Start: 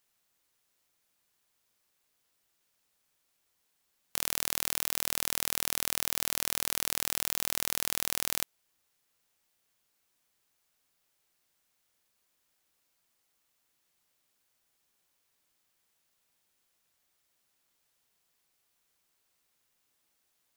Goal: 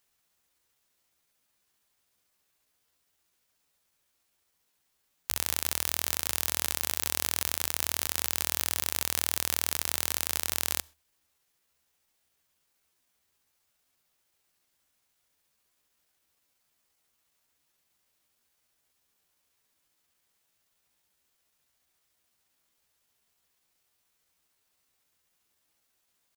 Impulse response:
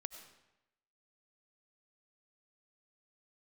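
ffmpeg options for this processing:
-filter_complex "[0:a]equalizer=f=76:w=6.6:g=9.5,atempo=0.78,asplit=2[s0][s1];[1:a]atrim=start_sample=2205,afade=t=out:st=0.24:d=0.01,atrim=end_sample=11025,asetrate=61740,aresample=44100[s2];[s1][s2]afir=irnorm=-1:irlink=0,volume=0.335[s3];[s0][s3]amix=inputs=2:normalize=0"

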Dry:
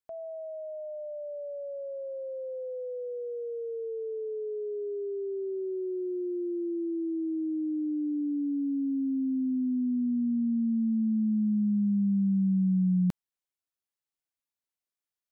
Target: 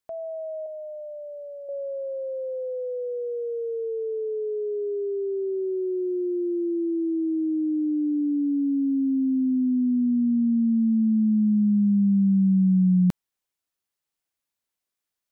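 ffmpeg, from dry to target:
-filter_complex "[0:a]asettb=1/sr,asplit=3[s0][s1][s2];[s0]atrim=end=0.664[s3];[s1]atrim=start=0.66:end=1.69,asetpts=PTS-STARTPTS,afade=t=in:d=0.004:c=qsin,afade=t=out:st=1.026:d=0.004:c=qsin,aecho=1:1:1:0.69,atrim=end_sample=45423[s4];[s2]atrim=start=1.686[s5];[s3][s4]acrossfade=d=0.004:c1=hsin:c2=qsin[s6];[s6][s5]acrossfade=d=0.004:c1=qsin:c2=hsin,volume=2"

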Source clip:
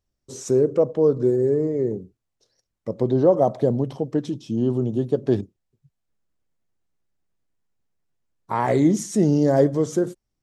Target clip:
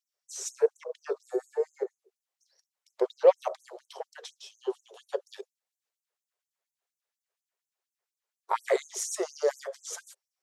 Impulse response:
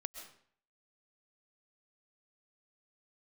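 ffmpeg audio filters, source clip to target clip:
-filter_complex "[0:a]aeval=exprs='0.531*(cos(1*acos(clip(val(0)/0.531,-1,1)))-cos(1*PI/2))+0.0106*(cos(8*acos(clip(val(0)/0.531,-1,1)))-cos(8*PI/2))':c=same,asettb=1/sr,asplit=3[s0][s1][s2];[s0]atrim=end=1.834[s3];[s1]atrim=start=1.83:end=2.9,asetpts=PTS-STARTPTS,afade=t=in:d=0.004:c=qsin,afade=t=out:st=1.066:d=0.004:c=qsin,acrossover=split=290[s4][s5];[s5]acompressor=threshold=0.0178:ratio=5[s6];[s4][s6]amix=inputs=2:normalize=0[s7];[s2]atrim=start=2.896[s8];[s3][s7]acrossfade=d=0.004:c1=hsin:c2=qsin[s9];[s9][s8]acrossfade=d=0.004:c1=qsin:c2=hsin,afftfilt=real='re*gte(b*sr/1024,350*pow(6100/350,0.5+0.5*sin(2*PI*4.2*pts/sr)))':imag='im*gte(b*sr/1024,350*pow(6100/350,0.5+0.5*sin(2*PI*4.2*pts/sr)))':win_size=1024:overlap=0.75"

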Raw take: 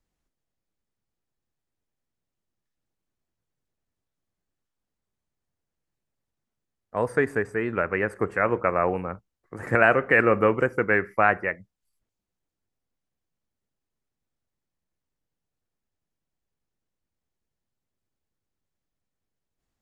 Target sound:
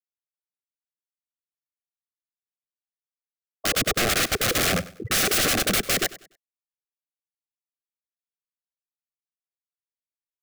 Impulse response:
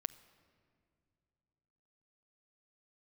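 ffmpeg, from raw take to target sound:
-filter_complex "[0:a]afftfilt=real='re*gte(hypot(re,im),0.1)':imag='im*gte(hypot(re,im),0.1)':win_size=1024:overlap=0.75,lowshelf=f=430:g=2.5,acrossover=split=110|1400[s0][s1][s2];[s1]acontrast=32[s3];[s0][s3][s2]amix=inputs=3:normalize=0,atempo=1.9,apsyclip=2.11,aeval=exprs='(mod(6.68*val(0)+1,2)-1)/6.68':c=same,asuperstop=centerf=940:order=4:qfactor=2.7,aecho=1:1:97|194|291:0.126|0.0378|0.0113"

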